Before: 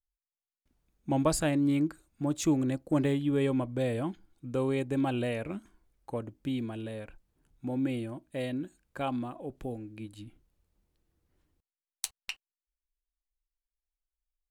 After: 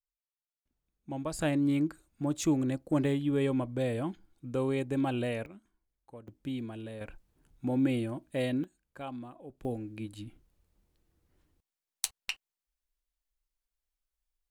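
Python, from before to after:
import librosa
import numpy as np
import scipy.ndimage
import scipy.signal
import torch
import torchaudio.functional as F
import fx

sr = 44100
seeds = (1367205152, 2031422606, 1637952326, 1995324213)

y = fx.gain(x, sr, db=fx.steps((0.0, -9.5), (1.39, -1.0), (5.46, -13.5), (6.28, -3.5), (7.01, 3.0), (8.64, -8.0), (9.65, 2.5)))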